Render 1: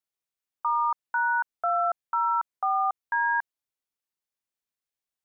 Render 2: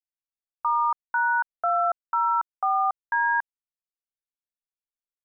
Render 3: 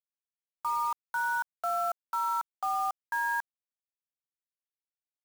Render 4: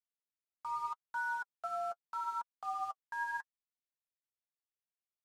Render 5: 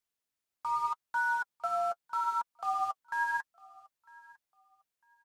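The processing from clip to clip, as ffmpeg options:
-af "anlmdn=3.98,volume=2dB"
-af "acrusher=bits=5:mix=0:aa=0.000001,volume=-7dB"
-filter_complex "[0:a]flanger=delay=4:depth=4.8:regen=27:speed=0.8:shape=sinusoidal,acrossover=split=1200[a][b];[b]adynamicsmooth=sensitivity=6.5:basefreq=6.9k[c];[a][c]amix=inputs=2:normalize=0,volume=-4.5dB"
-af "aecho=1:1:952|1904:0.0668|0.016,volume=6.5dB"

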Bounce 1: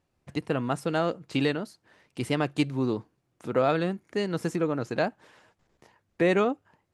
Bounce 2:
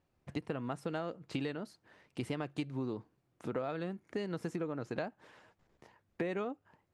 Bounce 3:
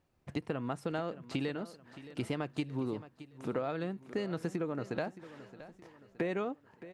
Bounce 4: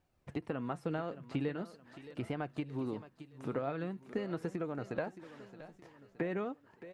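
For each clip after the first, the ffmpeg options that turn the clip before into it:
-af "highshelf=f=4.5k:g=-6.5,acompressor=threshold=-32dB:ratio=6,volume=-2dB"
-af "aecho=1:1:620|1240|1860|2480:0.168|0.0722|0.031|0.0133,volume=2dB"
-filter_complex "[0:a]acrossover=split=2600[a][b];[b]acompressor=threshold=-59dB:ratio=4:attack=1:release=60[c];[a][c]amix=inputs=2:normalize=0,flanger=delay=1.3:depth=6:regen=64:speed=0.42:shape=sinusoidal,volume=3dB"

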